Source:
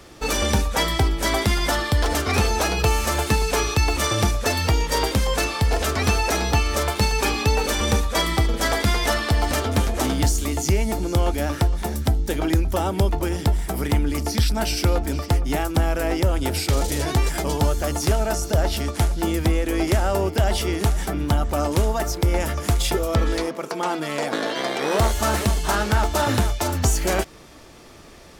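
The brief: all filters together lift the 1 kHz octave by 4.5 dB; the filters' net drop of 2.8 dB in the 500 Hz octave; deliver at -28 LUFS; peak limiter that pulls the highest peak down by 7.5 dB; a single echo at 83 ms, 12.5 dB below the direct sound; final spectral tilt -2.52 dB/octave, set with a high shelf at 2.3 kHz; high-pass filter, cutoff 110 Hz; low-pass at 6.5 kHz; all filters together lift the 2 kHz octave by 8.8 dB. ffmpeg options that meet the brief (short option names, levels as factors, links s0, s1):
-af "highpass=110,lowpass=6500,equalizer=f=500:t=o:g=-6,equalizer=f=1000:t=o:g=4.5,equalizer=f=2000:t=o:g=6,highshelf=f=2300:g=7.5,alimiter=limit=0.316:level=0:latency=1,aecho=1:1:83:0.237,volume=0.447"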